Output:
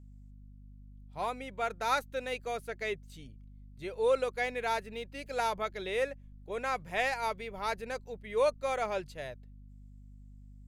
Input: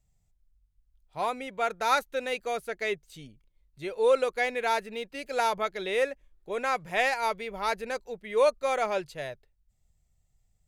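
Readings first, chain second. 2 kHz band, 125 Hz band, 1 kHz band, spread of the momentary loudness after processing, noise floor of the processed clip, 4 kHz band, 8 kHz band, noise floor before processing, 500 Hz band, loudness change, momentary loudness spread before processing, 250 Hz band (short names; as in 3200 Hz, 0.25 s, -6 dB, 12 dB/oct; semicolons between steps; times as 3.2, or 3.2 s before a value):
-5.0 dB, +3.0 dB, -5.0 dB, 14 LU, -53 dBFS, -5.0 dB, -5.0 dB, -72 dBFS, -5.0 dB, -5.0 dB, 13 LU, -4.0 dB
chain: hum 50 Hz, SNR 18 dB; low shelf 150 Hz +2.5 dB; gain -5 dB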